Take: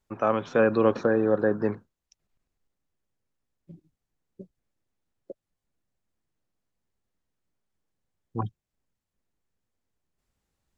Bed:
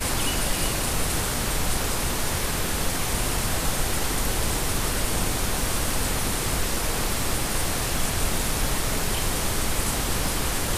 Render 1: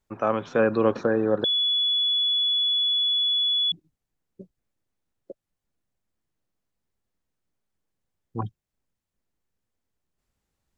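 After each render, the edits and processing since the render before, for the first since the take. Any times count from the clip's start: 1.44–3.72 bleep 3410 Hz -20 dBFS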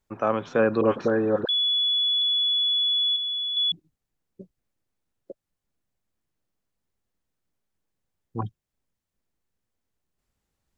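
0.81–2.22 dispersion highs, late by 50 ms, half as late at 1000 Hz; 3.16–3.57 air absorption 240 m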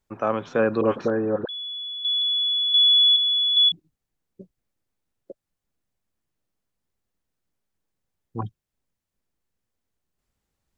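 1.1–2.05 air absorption 430 m; 2.74–3.69 tilt +4 dB/oct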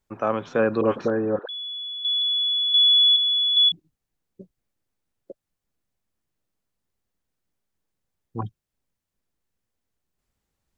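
1.39–2.45 HPF 550 Hz 24 dB/oct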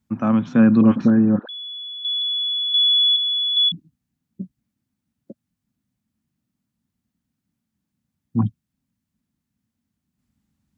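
HPF 80 Hz; resonant low shelf 320 Hz +10 dB, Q 3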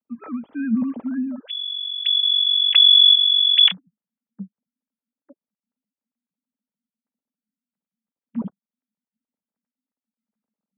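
sine-wave speech; notch comb 360 Hz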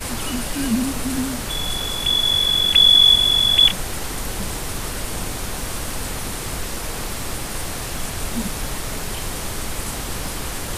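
add bed -2 dB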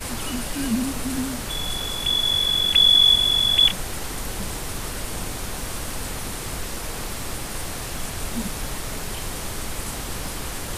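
gain -3 dB

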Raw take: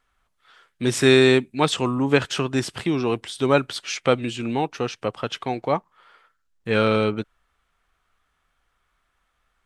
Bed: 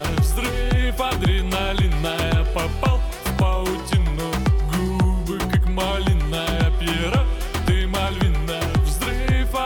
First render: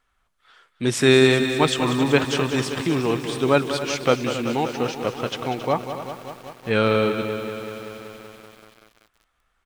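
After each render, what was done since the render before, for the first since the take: echo 0.271 s -13 dB; lo-fi delay 0.191 s, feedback 80%, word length 7-bit, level -10 dB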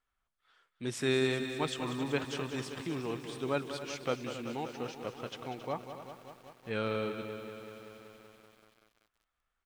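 gain -14.5 dB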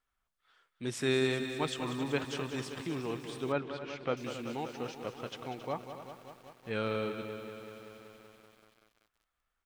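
3.52–4.17 LPF 2900 Hz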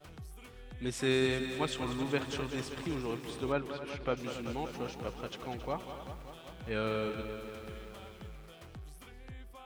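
add bed -29 dB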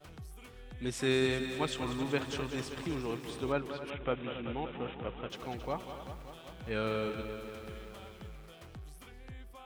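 3.9–5.3 careless resampling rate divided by 6×, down none, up filtered

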